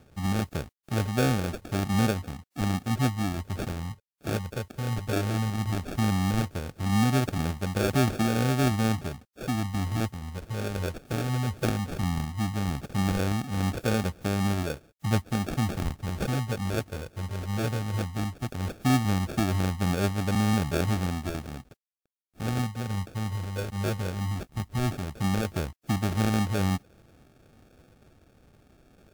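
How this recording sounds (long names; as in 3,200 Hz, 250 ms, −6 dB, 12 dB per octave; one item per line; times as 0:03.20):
a quantiser's noise floor 10 bits, dither none
phaser sweep stages 12, 0.16 Hz, lowest notch 300–1,400 Hz
aliases and images of a low sample rate 1,000 Hz, jitter 0%
WMA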